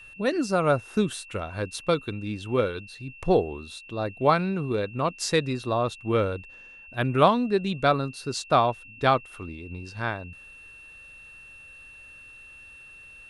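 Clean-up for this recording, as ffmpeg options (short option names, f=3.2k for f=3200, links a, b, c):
-af "bandreject=f=2.7k:w=30"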